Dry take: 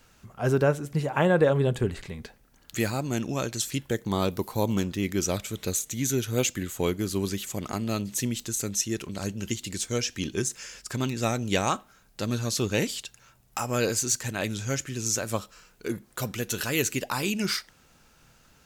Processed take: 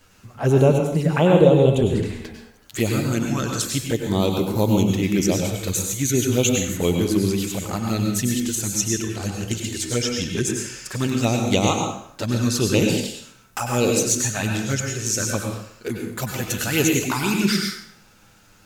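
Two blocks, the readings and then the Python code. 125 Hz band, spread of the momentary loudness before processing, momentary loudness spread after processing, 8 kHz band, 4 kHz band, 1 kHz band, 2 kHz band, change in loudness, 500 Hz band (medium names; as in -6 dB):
+8.0 dB, 10 LU, 11 LU, +6.0 dB, +6.0 dB, +4.5 dB, +4.5 dB, +7.0 dB, +7.0 dB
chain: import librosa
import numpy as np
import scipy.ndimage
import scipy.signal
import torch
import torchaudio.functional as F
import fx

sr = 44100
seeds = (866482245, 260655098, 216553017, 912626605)

y = fx.env_flanger(x, sr, rest_ms=11.0, full_db=-22.0)
y = fx.rev_plate(y, sr, seeds[0], rt60_s=0.66, hf_ratio=0.85, predelay_ms=85, drr_db=2.0)
y = F.gain(torch.from_numpy(y), 6.5).numpy()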